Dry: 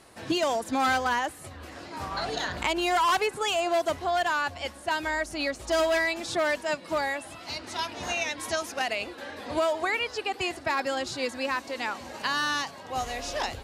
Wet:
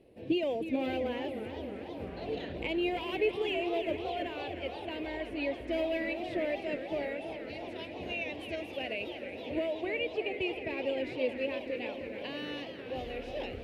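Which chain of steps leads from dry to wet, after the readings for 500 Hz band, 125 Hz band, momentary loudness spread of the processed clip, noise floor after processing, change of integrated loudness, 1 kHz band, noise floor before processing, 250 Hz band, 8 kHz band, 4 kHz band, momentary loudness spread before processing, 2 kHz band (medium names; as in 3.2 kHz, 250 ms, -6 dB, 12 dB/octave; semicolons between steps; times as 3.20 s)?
-3.5 dB, -3.0 dB, 8 LU, -43 dBFS, -7.0 dB, -14.0 dB, -45 dBFS, -0.5 dB, under -25 dB, -9.5 dB, 10 LU, -10.0 dB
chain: FFT filter 150 Hz 0 dB, 510 Hz +5 dB, 760 Hz -10 dB, 1.3 kHz -25 dB, 2.6 kHz -6 dB, 6.7 kHz -28 dB, 14 kHz -14 dB; echo that smears into a reverb 518 ms, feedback 61%, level -13 dB; dynamic bell 2.4 kHz, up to +7 dB, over -53 dBFS, Q 1.3; modulated delay 317 ms, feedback 71%, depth 201 cents, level -10 dB; trim -4.5 dB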